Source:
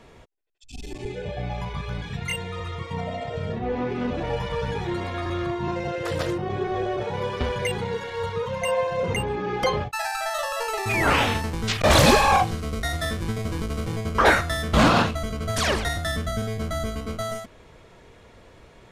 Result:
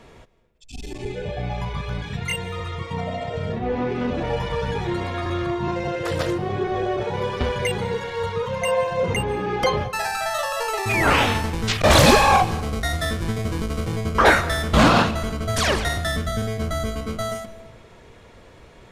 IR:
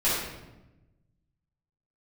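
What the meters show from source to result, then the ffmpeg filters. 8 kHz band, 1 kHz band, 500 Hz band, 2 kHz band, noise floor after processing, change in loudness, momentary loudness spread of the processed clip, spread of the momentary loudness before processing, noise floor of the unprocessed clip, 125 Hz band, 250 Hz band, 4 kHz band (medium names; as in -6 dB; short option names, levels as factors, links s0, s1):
+2.5 dB, +2.5 dB, +2.5 dB, +2.5 dB, -48 dBFS, +2.5 dB, 13 LU, 13 LU, -51 dBFS, +2.5 dB, +2.5 dB, +2.5 dB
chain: -filter_complex "[0:a]asplit=2[s0][s1];[1:a]atrim=start_sample=2205,adelay=143[s2];[s1][s2]afir=irnorm=-1:irlink=0,volume=0.0316[s3];[s0][s3]amix=inputs=2:normalize=0,volume=1.33"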